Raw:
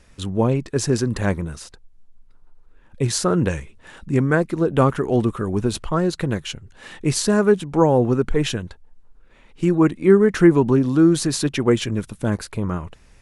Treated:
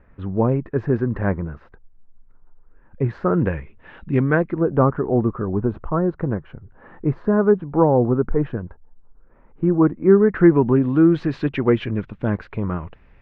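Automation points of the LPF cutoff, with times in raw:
LPF 24 dB/oct
3.23 s 1800 Hz
4.23 s 3300 Hz
4.77 s 1400 Hz
9.94 s 1400 Hz
10.95 s 2600 Hz

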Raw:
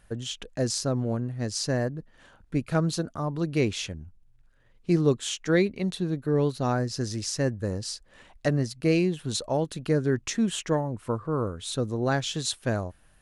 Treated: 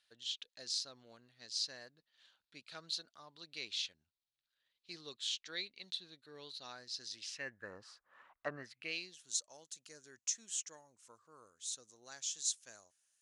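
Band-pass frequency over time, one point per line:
band-pass, Q 3.3
7.1 s 4000 Hz
7.79 s 1200 Hz
8.52 s 1200 Hz
9.21 s 6600 Hz

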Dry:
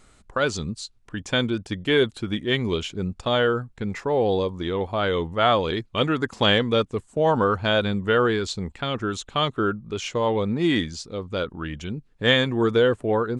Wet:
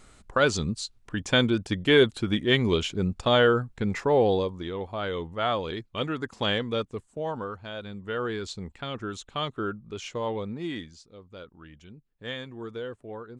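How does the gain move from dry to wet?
4.16 s +1 dB
4.72 s -7.5 dB
6.94 s -7.5 dB
7.71 s -17 dB
8.43 s -7.5 dB
10.3 s -7.5 dB
11.08 s -17 dB

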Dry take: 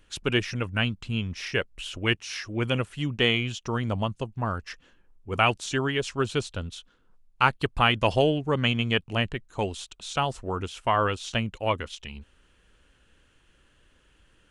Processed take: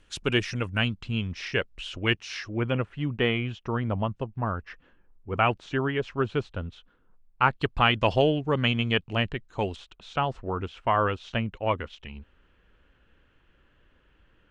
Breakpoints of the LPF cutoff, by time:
9500 Hz
from 0.88 s 5100 Hz
from 2.49 s 2100 Hz
from 7.51 s 4700 Hz
from 9.76 s 2500 Hz

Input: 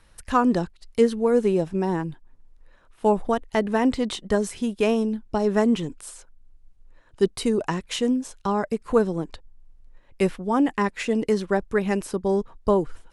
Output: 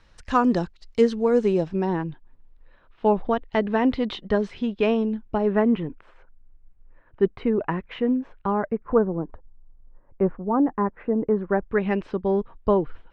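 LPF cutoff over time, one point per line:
LPF 24 dB/oct
1.52 s 6400 Hz
2 s 3900 Hz
4.88 s 3900 Hz
5.88 s 2300 Hz
8.52 s 2300 Hz
9.11 s 1300 Hz
11.29 s 1300 Hz
11.89 s 3300 Hz

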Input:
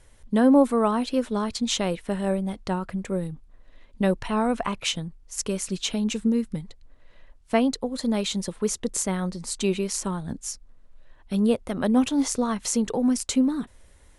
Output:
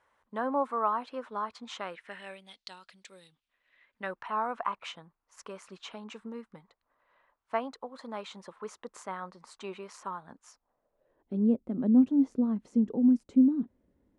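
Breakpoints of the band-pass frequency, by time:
band-pass, Q 2.2
1.73 s 1100 Hz
2.61 s 4100 Hz
3.18 s 4100 Hz
4.31 s 1100 Hz
10.48 s 1100 Hz
11.52 s 250 Hz

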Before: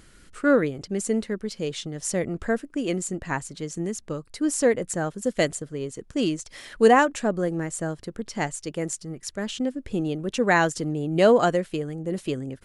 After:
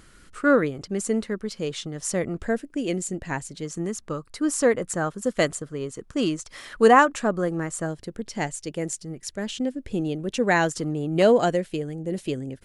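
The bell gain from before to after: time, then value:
bell 1200 Hz 0.64 oct
+4.5 dB
from 2.39 s -5 dB
from 3.65 s +7 dB
from 7.86 s -4 dB
from 10.69 s +5 dB
from 11.22 s -6 dB

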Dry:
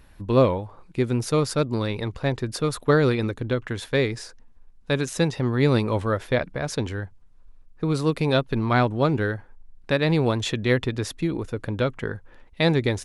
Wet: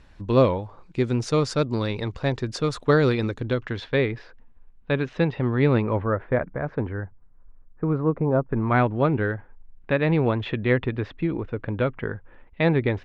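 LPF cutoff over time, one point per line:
LPF 24 dB/oct
3.53 s 7300 Hz
4.05 s 3100 Hz
5.65 s 3100 Hz
6.15 s 1800 Hz
7.85 s 1800 Hz
8.32 s 1100 Hz
8.8 s 2800 Hz

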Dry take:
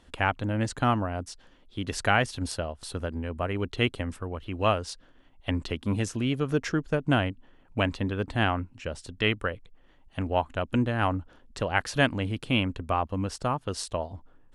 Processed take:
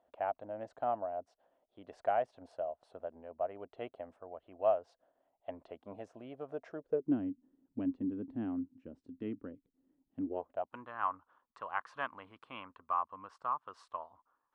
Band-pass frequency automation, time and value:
band-pass, Q 5.7
6.73 s 660 Hz
7.19 s 270 Hz
10.21 s 270 Hz
10.77 s 1100 Hz

